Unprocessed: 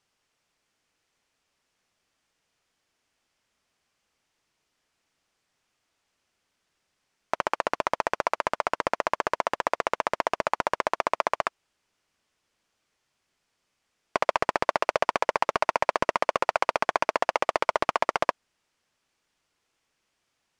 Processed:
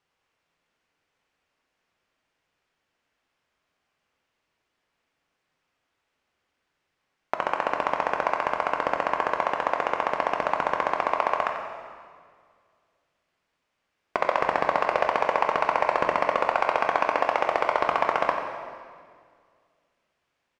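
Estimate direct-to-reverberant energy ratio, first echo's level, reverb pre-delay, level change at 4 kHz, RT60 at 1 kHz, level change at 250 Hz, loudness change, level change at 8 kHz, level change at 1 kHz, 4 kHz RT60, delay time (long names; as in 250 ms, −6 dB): 2.5 dB, −10.5 dB, 3 ms, −2.0 dB, 1.8 s, +1.5 dB, +2.0 dB, can't be measured, +2.5 dB, 1.7 s, 91 ms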